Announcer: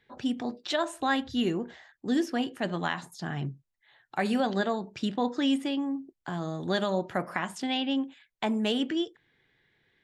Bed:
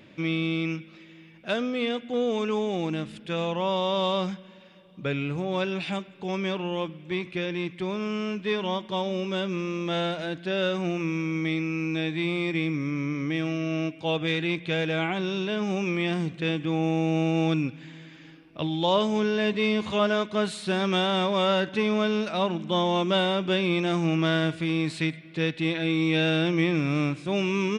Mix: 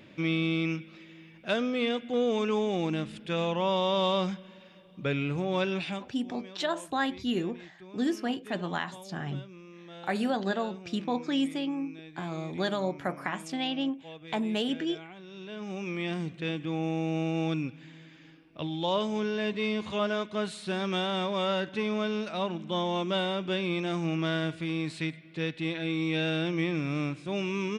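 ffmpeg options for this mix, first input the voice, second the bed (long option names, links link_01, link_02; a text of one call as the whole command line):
ffmpeg -i stem1.wav -i stem2.wav -filter_complex "[0:a]adelay=5900,volume=-2dB[link_01];[1:a]volume=12.5dB,afade=type=out:start_time=5.77:duration=0.41:silence=0.125893,afade=type=in:start_time=15.27:duration=0.83:silence=0.211349[link_02];[link_01][link_02]amix=inputs=2:normalize=0" out.wav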